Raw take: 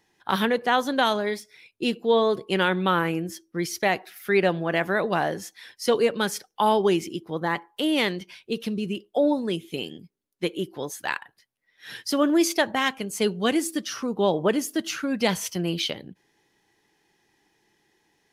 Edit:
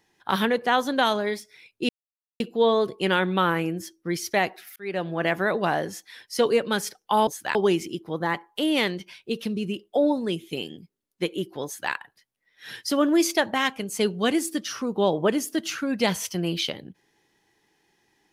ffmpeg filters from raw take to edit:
-filter_complex "[0:a]asplit=5[a][b][c][d][e];[a]atrim=end=1.89,asetpts=PTS-STARTPTS,afade=t=out:st=1.886:d=0.004:c=hsin,apad=pad_dur=0.51[f];[b]atrim=start=1.89:end=4.25,asetpts=PTS-STARTPTS,afade=t=in:d=0.004:c=hsin,afade=t=out:st=2.356:d=0.004:c=hsin[g];[c]atrim=start=4.25:end=6.762,asetpts=PTS-STARTPTS,afade=t=in:d=0.45[h];[d]atrim=start=10.858:end=11.142[i];[e]atrim=start=6.758[j];[f][g][h]concat=n=3:v=0:a=1[k];[k][i]acrossfade=d=0.004:c1=hsin:c2=hsin[l];[l][j]acrossfade=d=0.004:c1=hsin:c2=hsin"

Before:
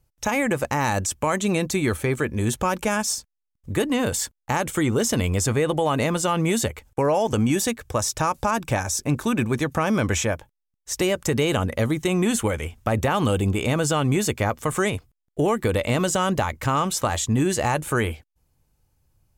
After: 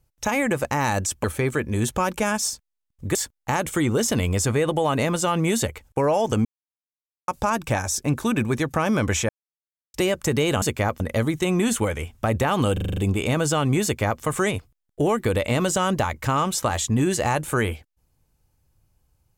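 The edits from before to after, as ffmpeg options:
-filter_complex "[0:a]asplit=15[a][b][c][d][e][f][g][h][i][j][k][l][m][n][o];[a]atrim=end=1.242[p];[b]atrim=start=1.888:end=3.802[q];[c]atrim=start=4.158:end=7.46,asetpts=PTS-STARTPTS,afade=t=out:st=3.298:d=0.004:c=hsin[r];[d]atrim=start=7.46:end=8.29,asetpts=PTS-STARTPTS,volume=0[s];[e]atrim=start=8.29:end=10.3,asetpts=PTS-STARTPTS,afade=t=in:d=0.004:c=hsin,afade=t=out:st=2.006:d=0.004:c=hsin[t];[f]atrim=start=10.3:end=10.95,asetpts=PTS-STARTPTS,volume=0[u];[g]atrim=start=10.95:end=11.632,asetpts=PTS-STARTPTS,afade=t=in:d=0.004:c=hsin[v];[h]atrim=start=14.228:end=14.612[w];[i]atrim=start=11.628:end=13.402[x];[j]atrim=start=13.358:end=13.402[y];[k]atrim=start=13.358:end=13.402[z];[l]atrim=start=13.358:end=13.402[aa];[m]atrim=start=13.358:end=13.402[ab];[n]atrim=start=13.358:end=13.402[ac];[o]atrim=start=13.358[ad];[p][q]acrossfade=d=0.004:c1=hsin:c2=hsin[ae];[r][s][t][u][v]concat=n=5:v=0:a=1[af];[ae][af]acrossfade=d=0.004:c1=hsin:c2=hsin[ag];[ag][w]acrossfade=d=0.004:c1=hsin:c2=hsin[ah];[ah][x]acrossfade=d=0.004:c1=hsin:c2=hsin[ai];[ai][y]acrossfade=d=0.004:c1=hsin:c2=hsin[aj];[aj][z]acrossfade=d=0.004:c1=hsin:c2=hsin[ak];[ak][aa]acrossfade=d=0.004:c1=hsin:c2=hsin[al];[al][ab]acrossfade=d=0.004:c1=hsin:c2=hsin[am];[am][ac]acrossfade=d=0.004:c1=hsin:c2=hsin[an];[an][ad]acrossfade=d=0.004:c1=hsin:c2=hsin"

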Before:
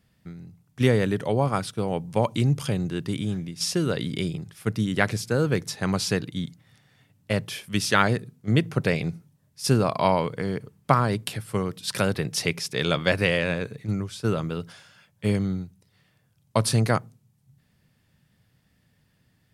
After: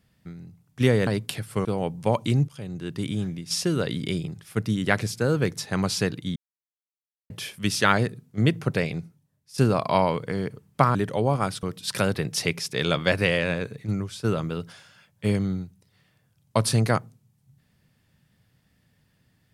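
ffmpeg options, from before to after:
-filter_complex "[0:a]asplit=9[a][b][c][d][e][f][g][h][i];[a]atrim=end=1.072[j];[b]atrim=start=11.048:end=11.632[k];[c]atrim=start=1.748:end=2.58,asetpts=PTS-STARTPTS,afade=t=out:st=0.828:d=0.004:c=hsin:silence=0.0794328[l];[d]atrim=start=2.58:end=6.46,asetpts=PTS-STARTPTS,afade=t=in:d=0.61:silence=0.0794328,afade=t=out:st=3.876:d=0.004:c=hsin[m];[e]atrim=start=6.46:end=7.4,asetpts=PTS-STARTPTS,volume=0[n];[f]atrim=start=7.4:end=9.68,asetpts=PTS-STARTPTS,afade=t=in:d=0.004:c=hsin,afade=t=out:st=1.28:d=1:silence=0.223872[o];[g]atrim=start=9.68:end=11.052,asetpts=PTS-STARTPTS,afade=t=in:d=0.004:c=hsin:silence=0.223872[p];[h]atrim=start=1.068:end=1.752[q];[i]atrim=start=11.628[r];[j][k]acrossfade=d=0.004:c1=hsin:c2=hsin[s];[l][m][n][o][p]concat=n=5:v=0:a=1[t];[s][t]acrossfade=d=0.004:c1=hsin:c2=hsin[u];[u][q]acrossfade=d=0.004:c1=hsin:c2=hsin[v];[v][r]acrossfade=d=0.004:c1=hsin:c2=hsin"

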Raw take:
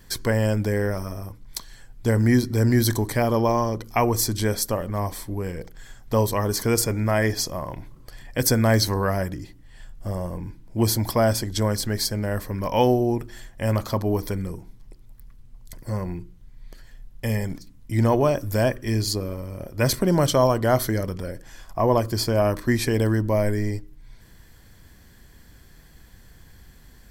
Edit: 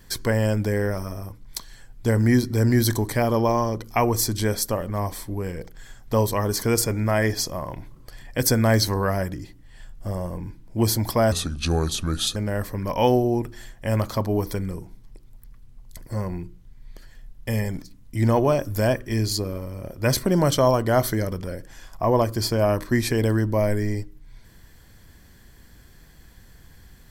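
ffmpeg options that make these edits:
-filter_complex "[0:a]asplit=3[a][b][c];[a]atrim=end=11.324[d];[b]atrim=start=11.32:end=12.12,asetpts=PTS-STARTPTS,asetrate=33957,aresample=44100,atrim=end_sample=45818,asetpts=PTS-STARTPTS[e];[c]atrim=start=12.116[f];[d][e]acrossfade=d=0.004:c1=hsin:c2=hsin[g];[g][f]acrossfade=d=0.004:c1=hsin:c2=hsin"

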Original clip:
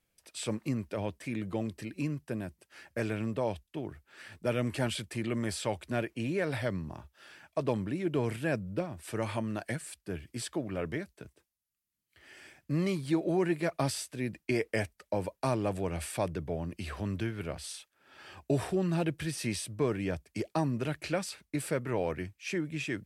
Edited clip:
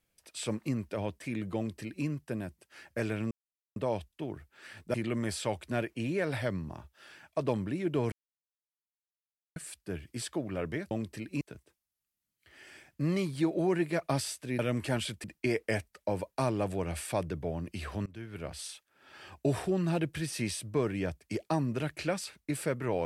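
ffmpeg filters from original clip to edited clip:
-filter_complex "[0:a]asplit=10[a][b][c][d][e][f][g][h][i][j];[a]atrim=end=3.31,asetpts=PTS-STARTPTS,afade=t=out:st=3.306:d=0.004:c=hsin,apad=pad_dur=0.45[k];[b]atrim=start=3.31:end=4.492,asetpts=PTS-STARTPTS,afade=t=in:d=0.004:c=hsin[l];[c]atrim=start=5.138:end=8.32,asetpts=PTS-STARTPTS,afade=t=out:st=3.178:d=0.004:c=hsin[m];[d]atrim=start=8.32:end=9.76,asetpts=PTS-STARTPTS,volume=0[n];[e]atrim=start=9.76:end=11.112,asetpts=PTS-STARTPTS,afade=t=in:d=0.004:c=hsin[o];[f]atrim=start=1.558:end=2.062[p];[g]atrim=start=11.108:end=14.292[q];[h]atrim=start=4.488:end=5.142[r];[i]atrim=start=14.288:end=17.11,asetpts=PTS-STARTPTS,afade=t=out:st=2.818:d=0.004:c=hsin:silence=0.0668344[s];[j]atrim=start=17.11,asetpts=PTS-STARTPTS,afade=t=in:d=0.51:silence=0.0668344[t];[k][l]concat=n=2:v=0:a=1[u];[m][n][o]concat=n=3:v=0:a=1[v];[u][v]acrossfade=d=0.004:c1=hsin:c2=hsin[w];[w][p]acrossfade=d=0.004:c1=hsin:c2=hsin[x];[x][q]acrossfade=d=0.004:c1=hsin:c2=hsin[y];[y][r]acrossfade=d=0.004:c1=hsin:c2=hsin[z];[s][t]concat=n=2:v=0:a=1[aa];[z][aa]acrossfade=d=0.004:c1=hsin:c2=hsin"

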